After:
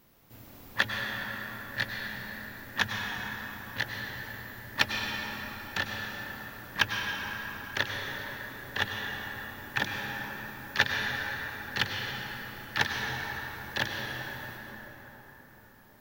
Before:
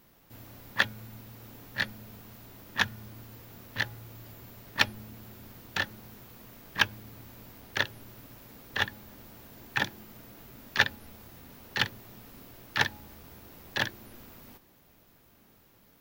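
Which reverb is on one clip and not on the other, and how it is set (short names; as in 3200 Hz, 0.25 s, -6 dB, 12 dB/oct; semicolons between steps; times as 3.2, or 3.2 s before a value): plate-style reverb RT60 4.9 s, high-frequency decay 0.5×, pre-delay 85 ms, DRR 0 dB; gain -1.5 dB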